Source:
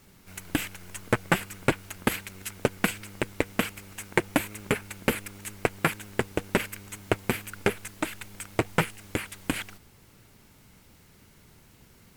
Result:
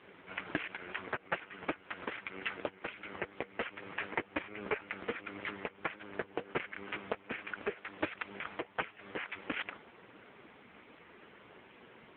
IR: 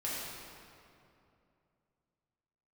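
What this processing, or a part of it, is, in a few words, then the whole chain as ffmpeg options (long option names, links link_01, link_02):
voicemail: -af "highpass=350,lowpass=2700,acompressor=threshold=-37dB:ratio=8,volume=11.5dB" -ar 8000 -c:a libopencore_amrnb -b:a 5150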